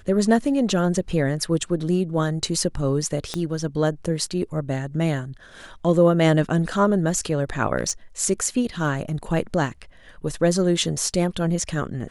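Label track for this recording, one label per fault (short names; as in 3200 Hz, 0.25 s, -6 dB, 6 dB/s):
3.340000	3.340000	pop -12 dBFS
7.770000	7.910000	clipped -15.5 dBFS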